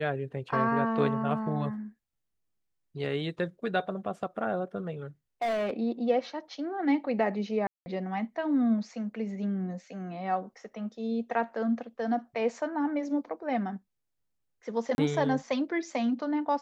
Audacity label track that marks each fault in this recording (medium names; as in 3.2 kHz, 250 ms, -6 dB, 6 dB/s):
5.420000	5.710000	clipped -26 dBFS
7.670000	7.860000	dropout 190 ms
14.950000	14.980000	dropout 31 ms